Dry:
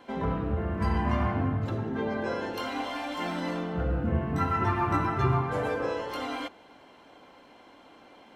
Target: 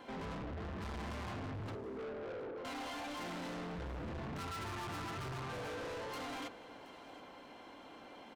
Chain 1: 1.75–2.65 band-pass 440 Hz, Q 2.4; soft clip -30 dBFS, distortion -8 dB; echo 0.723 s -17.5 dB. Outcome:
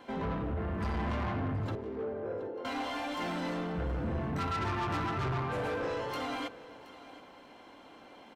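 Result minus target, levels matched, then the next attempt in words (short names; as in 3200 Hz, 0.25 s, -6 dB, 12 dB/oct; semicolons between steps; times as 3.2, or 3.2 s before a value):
soft clip: distortion -5 dB
1.75–2.65 band-pass 440 Hz, Q 2.4; soft clip -41.5 dBFS, distortion -3 dB; echo 0.723 s -17.5 dB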